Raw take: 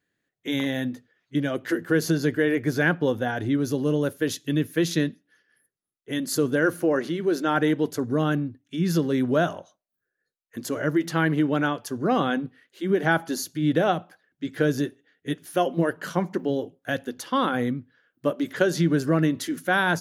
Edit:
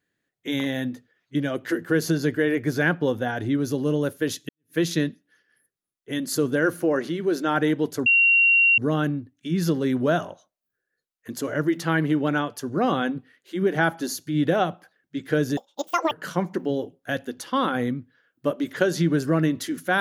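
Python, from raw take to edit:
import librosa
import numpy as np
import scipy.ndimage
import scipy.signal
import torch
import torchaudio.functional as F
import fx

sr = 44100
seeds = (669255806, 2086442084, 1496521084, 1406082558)

y = fx.edit(x, sr, fx.fade_in_span(start_s=4.49, length_s=0.26, curve='exp'),
    fx.insert_tone(at_s=8.06, length_s=0.72, hz=2750.0, db=-14.0),
    fx.speed_span(start_s=14.85, length_s=1.06, speed=1.95), tone=tone)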